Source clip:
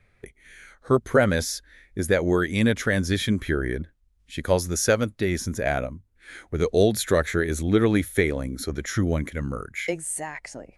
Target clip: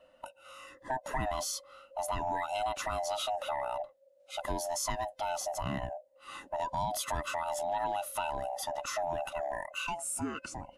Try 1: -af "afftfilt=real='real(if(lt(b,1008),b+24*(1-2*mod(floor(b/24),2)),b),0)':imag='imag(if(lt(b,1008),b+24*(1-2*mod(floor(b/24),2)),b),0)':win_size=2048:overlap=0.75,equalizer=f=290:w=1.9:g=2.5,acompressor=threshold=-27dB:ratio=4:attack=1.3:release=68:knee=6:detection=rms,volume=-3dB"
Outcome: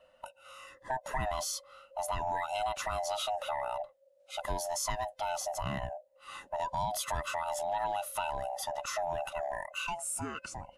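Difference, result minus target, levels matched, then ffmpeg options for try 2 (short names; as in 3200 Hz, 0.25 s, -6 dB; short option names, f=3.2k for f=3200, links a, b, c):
250 Hz band -4.5 dB
-af "afftfilt=real='real(if(lt(b,1008),b+24*(1-2*mod(floor(b/24),2)),b),0)':imag='imag(if(lt(b,1008),b+24*(1-2*mod(floor(b/24),2)),b),0)':win_size=2048:overlap=0.75,equalizer=f=290:w=1.9:g=12,acompressor=threshold=-27dB:ratio=4:attack=1.3:release=68:knee=6:detection=rms,volume=-3dB"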